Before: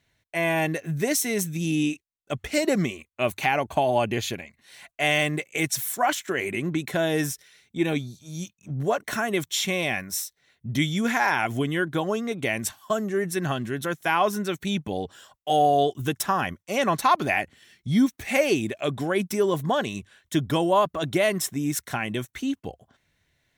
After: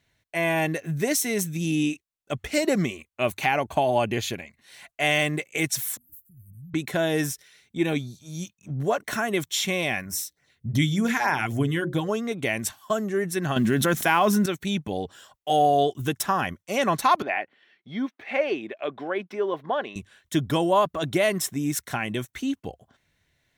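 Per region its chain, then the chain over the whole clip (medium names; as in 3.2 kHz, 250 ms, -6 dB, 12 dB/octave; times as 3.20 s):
5.97–6.74 s: inverse Chebyshev band-stop 520–4500 Hz, stop band 70 dB + peaking EQ 450 Hz -11 dB 1.9 oct
10.05–12.09 s: hum notches 60/120/180/240/300/360/420/480/540 Hz + LFO notch sine 3.4 Hz 570–4000 Hz + peaking EQ 95 Hz +7 dB 1.7 oct
13.56–14.46 s: block-companded coder 7-bit + peaking EQ 220 Hz +7 dB 0.41 oct + level flattener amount 70%
17.22–19.96 s: high-pass 400 Hz + distance through air 340 m
whole clip: none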